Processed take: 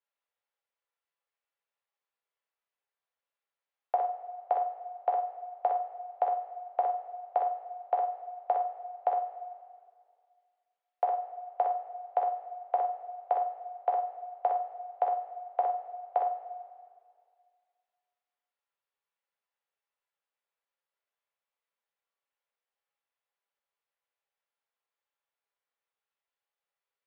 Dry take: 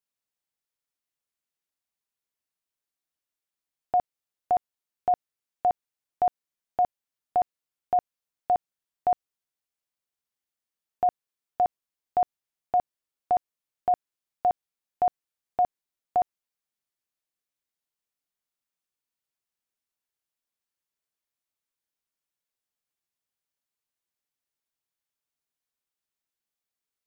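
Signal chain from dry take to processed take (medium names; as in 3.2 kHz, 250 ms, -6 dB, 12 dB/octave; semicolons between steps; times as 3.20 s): steep high-pass 420 Hz 72 dB/octave; compression 10:1, threshold -23 dBFS, peak gain reduction 4.5 dB; distance through air 370 m; flutter echo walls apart 8.1 m, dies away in 0.29 s; reverberation, pre-delay 3 ms, DRR 1.5 dB; trim +3 dB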